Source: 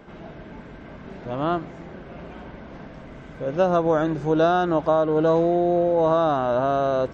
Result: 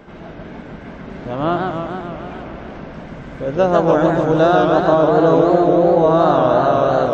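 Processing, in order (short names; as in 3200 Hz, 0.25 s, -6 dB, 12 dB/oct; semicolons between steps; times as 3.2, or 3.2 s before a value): warbling echo 0.148 s, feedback 71%, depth 200 cents, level -4 dB; gain +4.5 dB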